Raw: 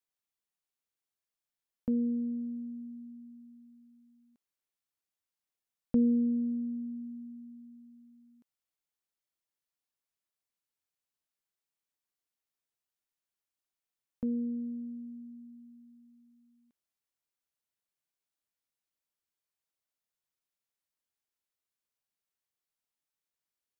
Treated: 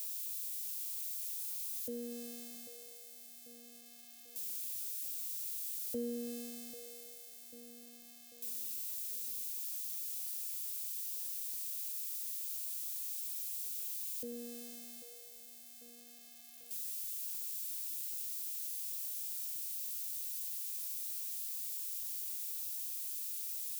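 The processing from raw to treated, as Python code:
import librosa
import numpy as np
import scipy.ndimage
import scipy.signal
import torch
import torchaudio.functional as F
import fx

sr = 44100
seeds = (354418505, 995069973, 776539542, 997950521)

p1 = x + 0.5 * 10.0 ** (-28.5 / 20.0) * np.diff(np.sign(x), prepend=np.sign(x[:1]))
p2 = scipy.signal.sosfilt(scipy.signal.butter(2, 100.0, 'highpass', fs=sr, output='sos'), p1)
p3 = fx.fixed_phaser(p2, sr, hz=420.0, stages=4)
p4 = fx.formant_shift(p3, sr, semitones=3)
p5 = p4 + fx.echo_feedback(p4, sr, ms=792, feedback_pct=54, wet_db=-14.0, dry=0)
y = F.gain(torch.from_numpy(p5), -7.0).numpy()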